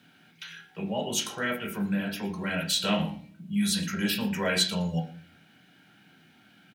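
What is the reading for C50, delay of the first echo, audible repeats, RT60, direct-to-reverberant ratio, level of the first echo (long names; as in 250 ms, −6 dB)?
11.0 dB, 115 ms, 1, 0.45 s, 1.0 dB, −18.0 dB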